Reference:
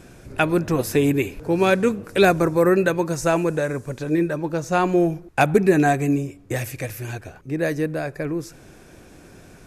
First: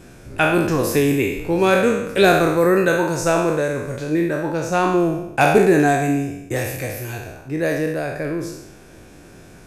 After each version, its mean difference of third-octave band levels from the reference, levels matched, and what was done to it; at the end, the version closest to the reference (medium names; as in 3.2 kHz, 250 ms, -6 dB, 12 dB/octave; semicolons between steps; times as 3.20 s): 4.0 dB: spectral sustain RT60 0.87 s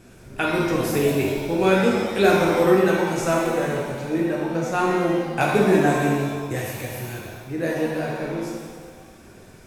7.5 dB: pitch-shifted reverb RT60 1.4 s, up +7 st, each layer -8 dB, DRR -3 dB; trim -5.5 dB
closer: first